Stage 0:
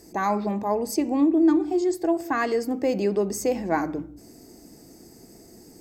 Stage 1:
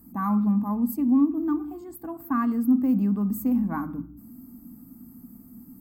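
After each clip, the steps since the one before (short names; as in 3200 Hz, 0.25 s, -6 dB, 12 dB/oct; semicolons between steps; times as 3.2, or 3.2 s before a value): EQ curve 150 Hz 0 dB, 250 Hz +11 dB, 360 Hz -19 dB, 640 Hz -17 dB, 1200 Hz +1 dB, 1900 Hz -17 dB, 2800 Hz -17 dB, 5900 Hz -27 dB, 14000 Hz +9 dB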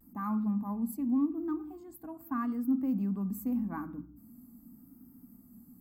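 vibrato 0.84 Hz 58 cents; gain -8.5 dB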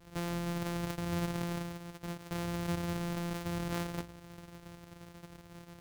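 sample sorter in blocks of 256 samples; in parallel at +1 dB: negative-ratio compressor -37 dBFS, ratio -0.5; on the sum: gain -7 dB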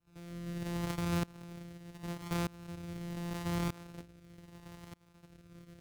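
rotary speaker horn 0.75 Hz; pre-echo 88 ms -13 dB; tremolo saw up 0.81 Hz, depth 95%; gain +3.5 dB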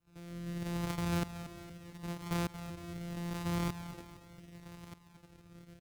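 feedback echo 0.231 s, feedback 52%, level -12 dB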